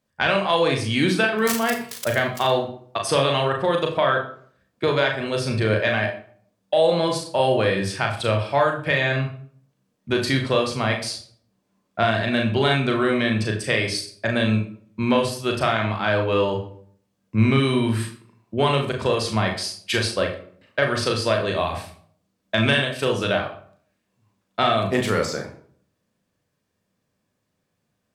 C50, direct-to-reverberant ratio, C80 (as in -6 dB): 8.5 dB, 2.0 dB, 11.5 dB